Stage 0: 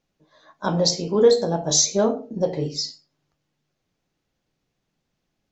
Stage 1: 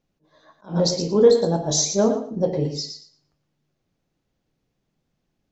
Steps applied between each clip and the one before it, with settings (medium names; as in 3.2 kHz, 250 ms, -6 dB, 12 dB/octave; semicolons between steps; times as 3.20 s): tilt shelf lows +3.5 dB, about 640 Hz; thinning echo 115 ms, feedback 20%, high-pass 280 Hz, level -8 dB; attacks held to a fixed rise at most 230 dB/s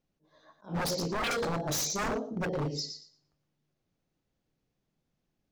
wavefolder -20 dBFS; trim -6 dB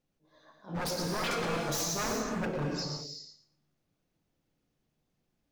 in parallel at -2 dB: peak limiter -33.5 dBFS, peak gain reduction 7.5 dB; on the sum: gated-style reverb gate 400 ms flat, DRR 1.5 dB; trim -5.5 dB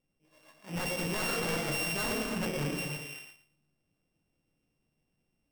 sorted samples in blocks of 16 samples